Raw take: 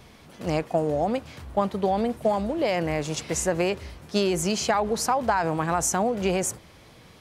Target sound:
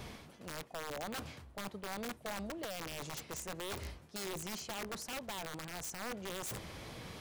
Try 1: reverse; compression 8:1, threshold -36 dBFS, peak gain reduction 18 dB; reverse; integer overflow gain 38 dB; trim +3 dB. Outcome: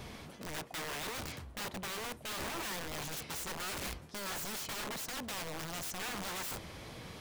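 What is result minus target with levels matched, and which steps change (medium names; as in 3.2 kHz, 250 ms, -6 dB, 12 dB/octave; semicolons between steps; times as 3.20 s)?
compression: peak gain reduction -6 dB
change: compression 8:1, threshold -43 dBFS, peak gain reduction 24.5 dB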